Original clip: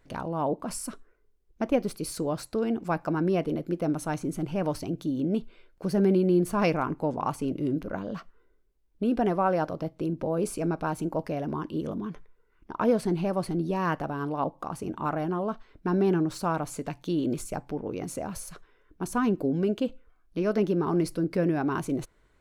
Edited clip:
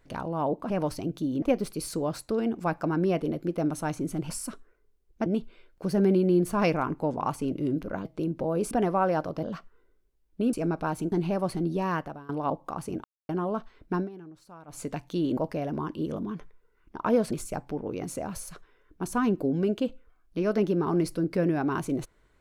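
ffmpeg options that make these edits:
-filter_complex "[0:a]asplit=17[s0][s1][s2][s3][s4][s5][s6][s7][s8][s9][s10][s11][s12][s13][s14][s15][s16];[s0]atrim=end=0.702[s17];[s1]atrim=start=4.538:end=5.262[s18];[s2]atrim=start=1.658:end=4.542[s19];[s3]atrim=start=0.698:end=1.662[s20];[s4]atrim=start=5.258:end=8.052[s21];[s5]atrim=start=9.868:end=10.532[s22];[s6]atrim=start=9.148:end=9.872[s23];[s7]atrim=start=8.048:end=9.152[s24];[s8]atrim=start=10.528:end=11.122[s25];[s9]atrim=start=13.058:end=14.23,asetpts=PTS-STARTPTS,afade=t=out:st=0.732:d=0.44:silence=0.0841395[s26];[s10]atrim=start=14.23:end=14.98,asetpts=PTS-STARTPTS,afade=t=in:d=0.004:c=hsin:silence=0.0841395,afade=t=out:st=0.746:d=0.004:c=hsin[s27];[s11]atrim=start=14.98:end=15.23,asetpts=PTS-STARTPTS,volume=0[s28];[s12]atrim=start=15.23:end=16.03,asetpts=PTS-STARTPTS,afade=t=in:d=0.004:c=hsin,afade=t=out:st=0.66:d=0.14:silence=0.0944061[s29];[s13]atrim=start=16.03:end=16.61,asetpts=PTS-STARTPTS,volume=0.0944[s30];[s14]atrim=start=16.61:end=17.312,asetpts=PTS-STARTPTS,afade=t=in:d=0.14:silence=0.0944061[s31];[s15]atrim=start=11.118:end=13.062[s32];[s16]atrim=start=17.308[s33];[s17][s18]acrossfade=d=0.004:c1=hsin:c2=hsin[s34];[s34][s19]acrossfade=d=0.004:c1=hsin:c2=hsin[s35];[s35][s20]acrossfade=d=0.004:c1=hsin:c2=hsin[s36];[s36][s21]acrossfade=d=0.004:c1=hsin:c2=hsin[s37];[s37][s22]acrossfade=d=0.004:c1=hsin:c2=hsin[s38];[s38][s23]acrossfade=d=0.004:c1=hsin:c2=hsin[s39];[s39][s24]acrossfade=d=0.004:c1=hsin:c2=hsin[s40];[s40][s25]acrossfade=d=0.004:c1=hsin:c2=hsin[s41];[s26][s27][s28][s29][s30][s31]concat=n=6:v=0:a=1[s42];[s41][s42]acrossfade=d=0.004:c1=hsin:c2=hsin[s43];[s43][s32]acrossfade=d=0.004:c1=hsin:c2=hsin[s44];[s44][s33]acrossfade=d=0.004:c1=hsin:c2=hsin"

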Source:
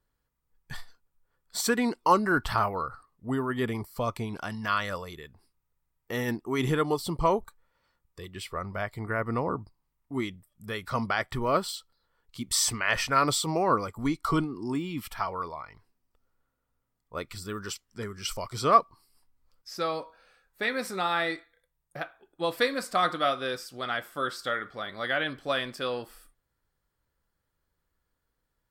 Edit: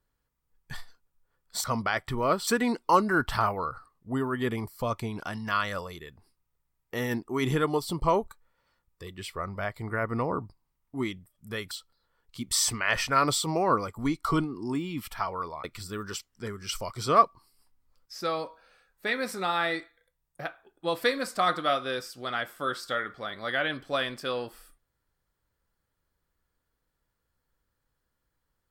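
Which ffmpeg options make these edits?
-filter_complex "[0:a]asplit=5[s0][s1][s2][s3][s4];[s0]atrim=end=1.642[s5];[s1]atrim=start=10.878:end=11.712[s6];[s2]atrim=start=1.638:end=10.882[s7];[s3]atrim=start=11.708:end=15.642[s8];[s4]atrim=start=17.198[s9];[s5][s6]acrossfade=d=0.004:c1=hsin:c2=hsin[s10];[s10][s7]acrossfade=d=0.004:c1=hsin:c2=hsin[s11];[s11][s8]acrossfade=d=0.004:c1=hsin:c2=hsin[s12];[s12][s9]acrossfade=d=0.004:c1=hsin:c2=hsin"

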